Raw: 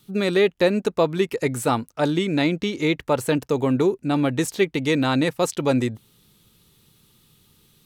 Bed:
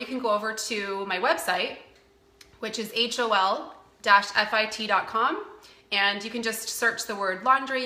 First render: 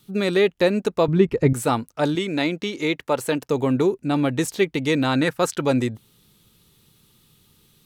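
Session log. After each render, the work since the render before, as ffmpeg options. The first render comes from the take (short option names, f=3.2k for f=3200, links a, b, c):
-filter_complex "[0:a]asettb=1/sr,asplit=3[a][b][c];[a]atrim=end=1.084[d];[b]atrim=start=1.08:end=1.53,asetpts=PTS-STARTPTS,afade=t=in:d=0.004:c=qsin,afade=t=out:st=0.446:d=0.004:c=qsin,aemphasis=mode=reproduction:type=riaa[e];[c]atrim=start=1.526[f];[d][e]acrossfade=d=0.004:c1=hsin:c2=qsin[g];[g][f]acrossfade=d=0.004:c1=qsin:c2=hsin,asettb=1/sr,asplit=3[h][i][j];[h]atrim=end=2.154[k];[i]atrim=start=2.15:end=3.48,asetpts=PTS-STARTPTS,afade=t=in:d=0.004:c=qsin,afade=t=out:st=1.326:d=0.004:c=qsin,highpass=f=260:p=1[l];[j]atrim=start=3.476[m];[k][l]acrossfade=d=0.004:c1=hsin:c2=qsin[n];[n][m]acrossfade=d=0.004:c1=qsin:c2=hsin,asettb=1/sr,asplit=3[o][p][q];[o]atrim=end=5.154[r];[p]atrim=start=5.15:end=5.63,asetpts=PTS-STARTPTS,afade=t=in:d=0.004:c=qsin,afade=t=out:st=0.476:d=0.004:c=qsin,equalizer=f=1.5k:w=3.1:g=10[s];[q]atrim=start=5.626[t];[r][s]acrossfade=d=0.004:c1=hsin:c2=qsin[u];[u][t]acrossfade=d=0.004:c1=qsin:c2=hsin"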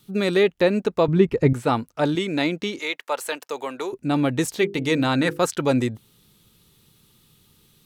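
-filter_complex "[0:a]asettb=1/sr,asplit=3[a][b][c];[a]atrim=end=0.434[d];[b]atrim=start=0.43:end=2.12,asetpts=PTS-STARTPTS,afade=t=in:d=0.004:c=qsin,afade=t=out:st=1.686:d=0.004:c=qsin,acrossover=split=4500[e][f];[f]acompressor=threshold=-46dB:ratio=4:attack=1:release=60[g];[e][g]amix=inputs=2:normalize=0[h];[c]atrim=start=2.116[i];[d][h]acrossfade=d=0.004:c1=hsin:c2=qsin[j];[j][i]acrossfade=d=0.004:c1=qsin:c2=hsin,asettb=1/sr,asplit=3[k][l][m];[k]atrim=end=2.794[n];[l]atrim=start=2.79:end=3.93,asetpts=PTS-STARTPTS,afade=t=in:d=0.004:c=qsin,afade=t=out:st=1.136:d=0.004:c=qsin,highpass=690[o];[m]atrim=start=3.926[p];[n][o]acrossfade=d=0.004:c1=hsin:c2=qsin[q];[q][p]acrossfade=d=0.004:c1=qsin:c2=hsin,asettb=1/sr,asplit=3[r][s][t];[r]atrim=end=4.564[u];[s]atrim=start=4.56:end=5.39,asetpts=PTS-STARTPTS,afade=t=in:d=0.004:c=qsin,afade=t=out:st=0.826:d=0.004:c=qsin,bandreject=f=50:t=h:w=6,bandreject=f=100:t=h:w=6,bandreject=f=150:t=h:w=6,bandreject=f=200:t=h:w=6,bandreject=f=250:t=h:w=6,bandreject=f=300:t=h:w=6,bandreject=f=350:t=h:w=6,bandreject=f=400:t=h:w=6,bandreject=f=450:t=h:w=6,bandreject=f=500:t=h:w=6[v];[t]atrim=start=5.386[w];[u][v]acrossfade=d=0.004:c1=hsin:c2=qsin[x];[x][w]acrossfade=d=0.004:c1=qsin:c2=hsin"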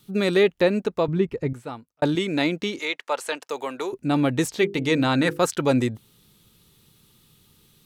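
-filter_complex "[0:a]asettb=1/sr,asplit=3[a][b][c];[a]atrim=end=2.854[d];[b]atrim=start=2.85:end=3.48,asetpts=PTS-STARTPTS,afade=t=in:d=0.004:c=qsin,afade=t=out:st=0.626:d=0.004:c=qsin,lowpass=8.9k[e];[c]atrim=start=3.476[f];[d][e]acrossfade=d=0.004:c1=hsin:c2=qsin[g];[g][f]acrossfade=d=0.004:c1=qsin:c2=hsin,asettb=1/sr,asplit=3[h][i][j];[h]atrim=end=4.484[k];[i]atrim=start=4.48:end=5.18,asetpts=PTS-STARTPTS,afade=t=in:d=0.004:c=qsin,afade=t=out:st=0.696:d=0.004:c=qsin,acrossover=split=8200[l][m];[m]acompressor=threshold=-52dB:ratio=4:attack=1:release=60[n];[l][n]amix=inputs=2:normalize=0[o];[j]atrim=start=5.176[p];[k][o]acrossfade=d=0.004:c1=hsin:c2=qsin[q];[q][p]acrossfade=d=0.004:c1=qsin:c2=hsin,asplit=2[r][s];[r]atrim=end=2.02,asetpts=PTS-STARTPTS,afade=t=out:st=0.52:d=1.5[t];[s]atrim=start=2.02,asetpts=PTS-STARTPTS,afade=t=in:d=0.004:c=hsin[u];[t][u]concat=n=2:v=0:a=1"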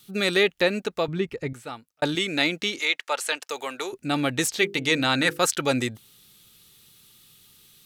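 -af "tiltshelf=f=970:g=-6,bandreject=f=1k:w=8.9"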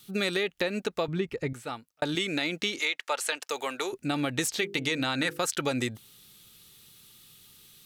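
-af "alimiter=limit=-12dB:level=0:latency=1:release=115,acompressor=threshold=-25dB:ratio=4"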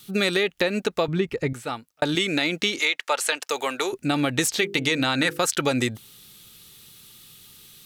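-af "volume=6dB"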